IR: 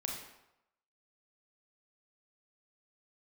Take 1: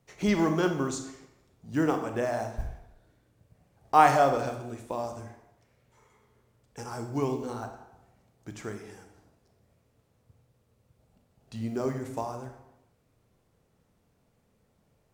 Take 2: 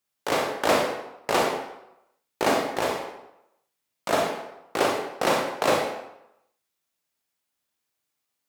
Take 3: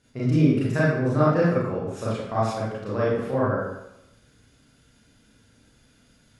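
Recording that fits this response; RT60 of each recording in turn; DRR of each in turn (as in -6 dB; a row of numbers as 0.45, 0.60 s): 2; 0.85, 0.85, 0.85 s; 6.0, -0.5, -9.0 dB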